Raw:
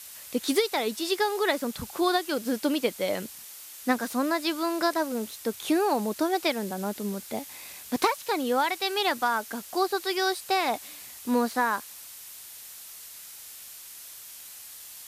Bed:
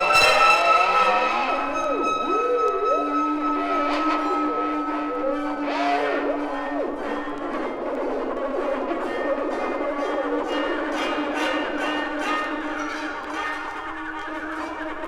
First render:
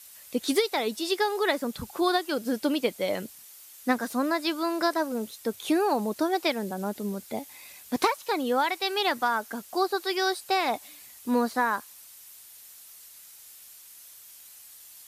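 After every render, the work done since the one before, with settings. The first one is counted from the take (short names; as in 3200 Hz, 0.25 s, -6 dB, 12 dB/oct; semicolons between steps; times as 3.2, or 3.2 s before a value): denoiser 7 dB, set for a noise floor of -45 dBFS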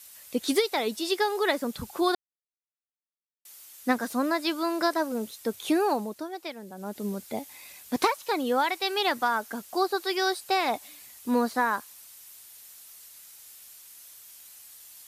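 2.15–3.45 mute; 5.9–7.04 dip -11 dB, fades 0.44 s quadratic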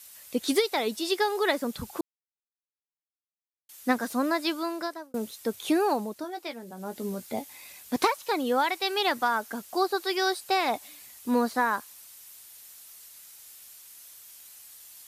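2.01–3.69 mute; 4.46–5.14 fade out; 6.22–7.42 doubler 17 ms -8.5 dB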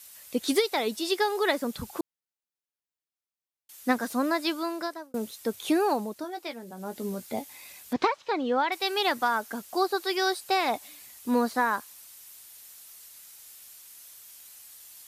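7.93–8.72 air absorption 160 m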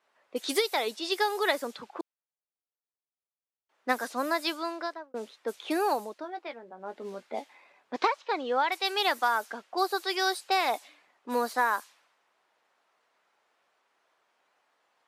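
low-pass opened by the level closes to 870 Hz, open at -23 dBFS; HPF 430 Hz 12 dB/oct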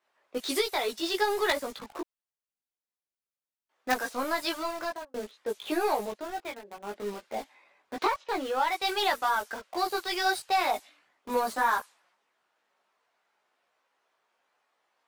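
in parallel at -10 dB: companded quantiser 2-bit; on the sum: chorus voices 6, 0.71 Hz, delay 17 ms, depth 2.8 ms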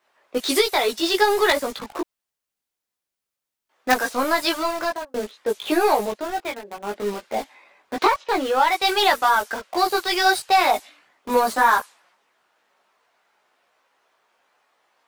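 gain +9 dB; limiter -2 dBFS, peak gain reduction 2 dB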